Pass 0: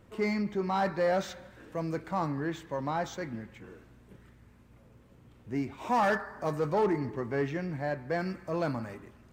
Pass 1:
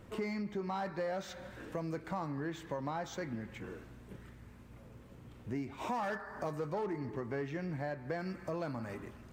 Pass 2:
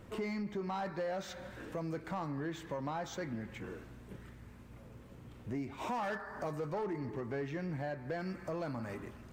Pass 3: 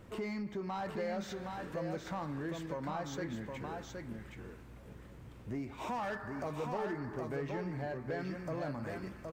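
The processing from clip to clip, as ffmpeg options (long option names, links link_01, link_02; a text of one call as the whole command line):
ffmpeg -i in.wav -af "acompressor=threshold=-40dB:ratio=4,volume=3.5dB" out.wav
ffmpeg -i in.wav -af "asoftclip=type=tanh:threshold=-30dB,volume=1dB" out.wav
ffmpeg -i in.wav -af "aecho=1:1:768:0.596,volume=-1dB" out.wav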